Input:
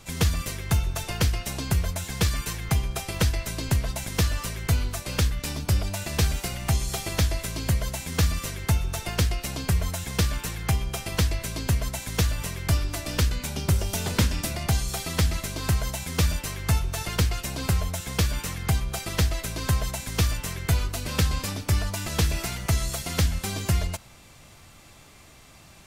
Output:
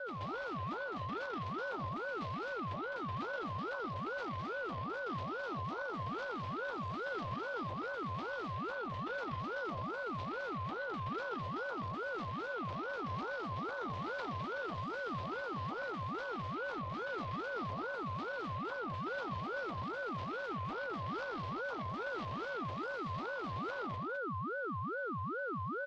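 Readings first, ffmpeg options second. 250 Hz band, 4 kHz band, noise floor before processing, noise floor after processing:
−10.5 dB, −20.0 dB, −50 dBFS, −41 dBFS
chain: -filter_complex "[0:a]equalizer=frequency=950:width_type=o:width=0.77:gain=-4,asplit=2[link_01][link_02];[link_02]acompressor=threshold=-35dB:ratio=6,volume=1dB[link_03];[link_01][link_03]amix=inputs=2:normalize=0,aeval=exprs='0.376*(cos(1*acos(clip(val(0)/0.376,-1,1)))-cos(1*PI/2))+0.15*(cos(3*acos(clip(val(0)/0.376,-1,1)))-cos(3*PI/2))+0.0668*(cos(4*acos(clip(val(0)/0.376,-1,1)))-cos(4*PI/2))+0.0299*(cos(5*acos(clip(val(0)/0.376,-1,1)))-cos(5*PI/2))+0.0237*(cos(7*acos(clip(val(0)/0.376,-1,1)))-cos(7*PI/2))':channel_layout=same,aeval=exprs='val(0)+0.00891*sin(2*PI*680*n/s)':channel_layout=same,asoftclip=type=tanh:threshold=-29dB,highpass=frequency=160:width=0.5412,highpass=frequency=160:width=1.3066,equalizer=frequency=670:width_type=q:width=4:gain=9,equalizer=frequency=1100:width_type=q:width=4:gain=-8,equalizer=frequency=2100:width_type=q:width=4:gain=-4,lowpass=frequency=3500:width=0.5412,lowpass=frequency=3500:width=1.3066,afreqshift=-210,aecho=1:1:158|209:0.299|0.596,aeval=exprs='val(0)*sin(2*PI*800*n/s+800*0.3/2.4*sin(2*PI*2.4*n/s))':channel_layout=same,volume=-3dB"

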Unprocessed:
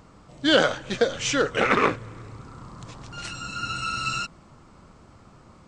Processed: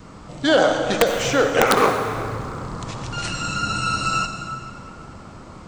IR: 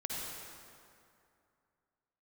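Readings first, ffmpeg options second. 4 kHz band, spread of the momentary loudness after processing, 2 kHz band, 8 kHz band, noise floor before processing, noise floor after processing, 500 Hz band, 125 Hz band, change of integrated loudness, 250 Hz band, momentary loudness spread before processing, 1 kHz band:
+1.5 dB, 22 LU, +2.5 dB, +5.0 dB, −52 dBFS, −41 dBFS, +6.0 dB, +7.5 dB, +3.5 dB, +4.0 dB, 22 LU, +6.5 dB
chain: -filter_complex "[0:a]acrossover=split=440|1300|5100[link_01][link_02][link_03][link_04];[link_01]acompressor=threshold=-37dB:ratio=4[link_05];[link_02]acompressor=threshold=-27dB:ratio=4[link_06];[link_03]acompressor=threshold=-41dB:ratio=4[link_07];[link_04]acompressor=threshold=-44dB:ratio=4[link_08];[link_05][link_06][link_07][link_08]amix=inputs=4:normalize=0,adynamicequalizer=threshold=0.00447:dfrequency=750:dqfactor=3.4:tfrequency=750:tqfactor=3.4:attack=5:release=100:ratio=0.375:range=3:mode=boostabove:tftype=bell,aeval=exprs='(mod(5.31*val(0)+1,2)-1)/5.31':channel_layout=same,bandreject=frequency=60:width_type=h:width=6,bandreject=frequency=120:width_type=h:width=6,asplit=2[link_09][link_10];[1:a]atrim=start_sample=2205[link_11];[link_10][link_11]afir=irnorm=-1:irlink=0,volume=-3dB[link_12];[link_09][link_12]amix=inputs=2:normalize=0,volume=6.5dB"

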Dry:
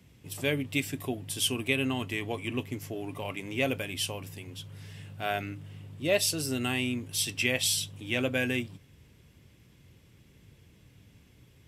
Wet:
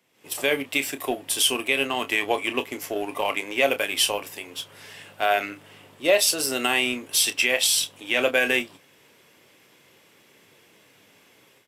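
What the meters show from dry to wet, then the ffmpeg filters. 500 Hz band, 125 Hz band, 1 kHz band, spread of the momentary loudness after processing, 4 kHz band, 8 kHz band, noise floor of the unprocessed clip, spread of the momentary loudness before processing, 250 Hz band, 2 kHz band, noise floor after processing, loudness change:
+8.0 dB, −12.0 dB, +11.5 dB, 15 LU, +8.5 dB, +8.0 dB, −59 dBFS, 16 LU, +0.5 dB, +8.5 dB, −58 dBFS, +7.5 dB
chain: -filter_complex "[0:a]dynaudnorm=framelen=130:gausssize=3:maxgain=13dB,highpass=550,highshelf=frequency=6800:gain=4,asplit=2[link_01][link_02];[link_02]adelay=29,volume=-10dB[link_03];[link_01][link_03]amix=inputs=2:normalize=0,asplit=2[link_04][link_05];[link_05]aeval=exprs='sgn(val(0))*max(abs(val(0))-0.0299,0)':channel_layout=same,volume=-6dB[link_06];[link_04][link_06]amix=inputs=2:normalize=0,highshelf=frequency=2200:gain=-7.5,alimiter=limit=-9dB:level=0:latency=1:release=70"

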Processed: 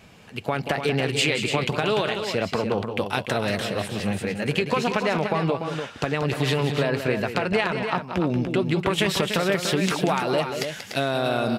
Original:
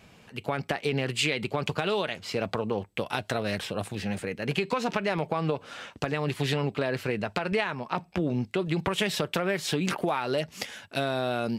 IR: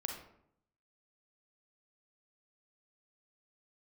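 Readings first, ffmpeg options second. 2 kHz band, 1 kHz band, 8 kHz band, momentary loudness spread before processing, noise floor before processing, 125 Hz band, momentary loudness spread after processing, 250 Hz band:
+5.0 dB, +5.0 dB, +5.0 dB, 5 LU, −56 dBFS, +5.0 dB, 5 LU, +5.0 dB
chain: -af "aecho=1:1:184|293:0.355|0.422,volume=4dB"

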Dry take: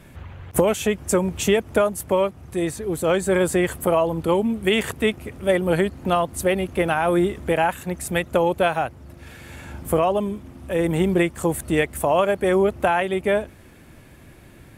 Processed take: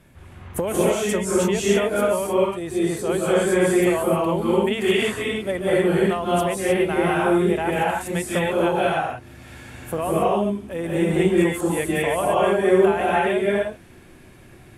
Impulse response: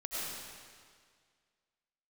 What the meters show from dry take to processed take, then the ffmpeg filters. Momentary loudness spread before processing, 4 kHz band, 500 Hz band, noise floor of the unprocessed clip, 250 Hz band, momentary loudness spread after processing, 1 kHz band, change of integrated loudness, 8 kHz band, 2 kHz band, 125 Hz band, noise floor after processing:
8 LU, +0.5 dB, +1.0 dB, −47 dBFS, +1.5 dB, 7 LU, +0.5 dB, +1.0 dB, +0.5 dB, +0.5 dB, 0.0 dB, −47 dBFS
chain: -filter_complex "[1:a]atrim=start_sample=2205,afade=type=out:start_time=0.23:duration=0.01,atrim=end_sample=10584,asetrate=25137,aresample=44100[link_01];[0:a][link_01]afir=irnorm=-1:irlink=0,volume=-5dB"

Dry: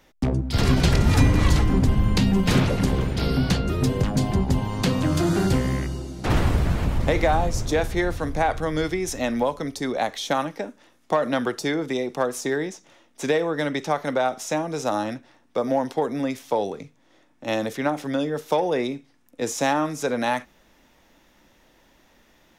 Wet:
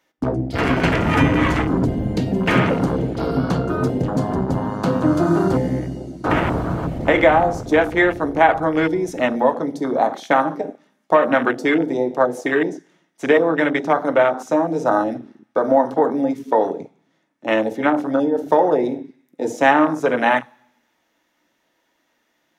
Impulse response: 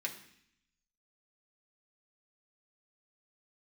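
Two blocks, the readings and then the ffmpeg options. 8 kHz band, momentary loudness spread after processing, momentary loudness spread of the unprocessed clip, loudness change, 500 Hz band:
can't be measured, 9 LU, 9 LU, +5.0 dB, +7.0 dB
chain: -filter_complex "[0:a]asplit=2[link_01][link_02];[link_02]equalizer=frequency=500:width=0.4:gain=4[link_03];[1:a]atrim=start_sample=2205,asetrate=36162,aresample=44100[link_04];[link_03][link_04]afir=irnorm=-1:irlink=0,volume=-3dB[link_05];[link_01][link_05]amix=inputs=2:normalize=0,afwtdn=0.0631,highpass=frequency=160:poles=1,lowshelf=frequency=320:gain=-2.5,volume=3.5dB"

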